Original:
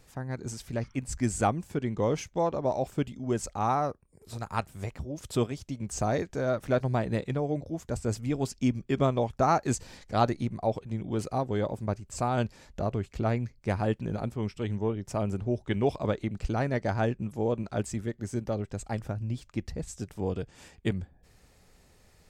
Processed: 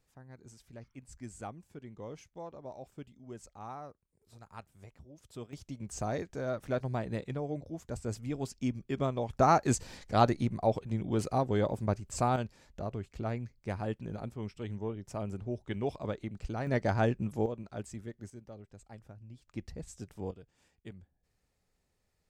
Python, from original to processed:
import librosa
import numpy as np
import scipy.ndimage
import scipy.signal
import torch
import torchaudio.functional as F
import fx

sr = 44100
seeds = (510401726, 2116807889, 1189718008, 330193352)

y = fx.gain(x, sr, db=fx.steps((0.0, -17.0), (5.53, -6.5), (9.29, 0.0), (12.36, -7.5), (16.67, -0.5), (17.46, -10.0), (18.3, -17.5), (19.48, -7.5), (20.31, -18.5)))